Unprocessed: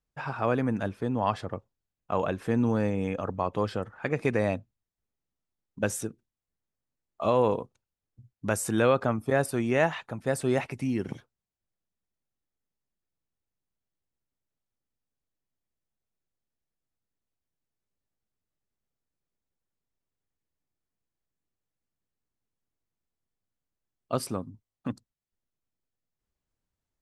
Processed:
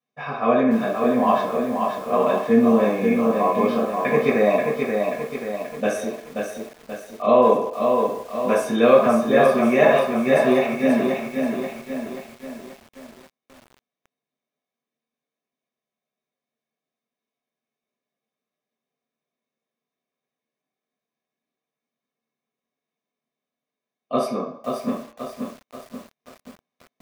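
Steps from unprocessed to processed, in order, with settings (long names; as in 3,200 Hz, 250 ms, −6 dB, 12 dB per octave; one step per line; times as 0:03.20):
high-pass filter 490 Hz 12 dB per octave
convolution reverb RT60 0.60 s, pre-delay 3 ms, DRR −7.5 dB
feedback echo at a low word length 532 ms, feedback 55%, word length 6 bits, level −4.5 dB
level −7.5 dB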